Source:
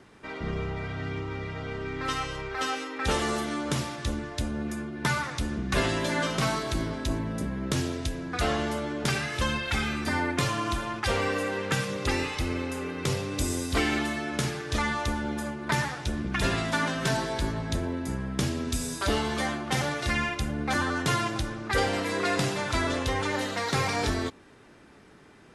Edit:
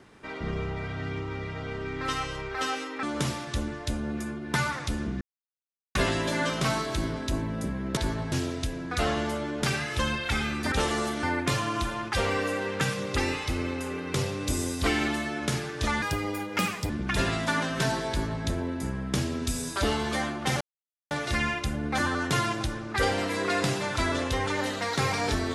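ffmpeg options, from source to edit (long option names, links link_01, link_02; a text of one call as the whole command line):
ffmpeg -i in.wav -filter_complex "[0:a]asplit=10[link_01][link_02][link_03][link_04][link_05][link_06][link_07][link_08][link_09][link_10];[link_01]atrim=end=3.032[link_11];[link_02]atrim=start=3.538:end=5.72,asetpts=PTS-STARTPTS,afade=type=out:start_time=2.178:duration=0.004:curve=hsin,apad=pad_dur=0.74[link_12];[link_03]atrim=start=5.72:end=7.742,asetpts=PTS-STARTPTS,afade=type=in:duration=0.004:curve=hsin[link_13];[link_04]atrim=start=17.348:end=17.702[link_14];[link_05]atrim=start=7.738:end=10.142[link_15];[link_06]atrim=start=3.028:end=3.542[link_16];[link_07]atrim=start=10.138:end=14.934[link_17];[link_08]atrim=start=14.93:end=16.15,asetpts=PTS-STARTPTS,asetrate=61299,aresample=44100,atrim=end_sample=38706,asetpts=PTS-STARTPTS[link_18];[link_09]atrim=start=16.146:end=19.86,asetpts=PTS-STARTPTS,afade=type=out:start_time=3.71:duration=0.004:curve=hsin,apad=pad_dur=0.5[link_19];[link_10]atrim=start=19.86,asetpts=PTS-STARTPTS,afade=type=in:duration=0.004:curve=hsin[link_20];[link_12][link_13]concat=n=2:v=0:a=1[link_21];[link_11][link_21]acrossfade=duration=0.004:curve1=hsin:curve2=hsin[link_22];[link_22][link_14]acrossfade=duration=0.004:curve1=hsin:curve2=hsin[link_23];[link_23][link_15]acrossfade=duration=0.004:curve1=hsin:curve2=hsin[link_24];[link_24][link_16]acrossfade=duration=0.004:curve1=hsin:curve2=hsin[link_25];[link_25][link_17]acrossfade=duration=0.004:curve1=hsin:curve2=hsin[link_26];[link_26][link_18]acrossfade=duration=0.004:curve1=hsin:curve2=hsin[link_27];[link_19][link_20]concat=n=2:v=0:a=1[link_28];[link_27][link_28]acrossfade=duration=0.004:curve1=hsin:curve2=hsin" out.wav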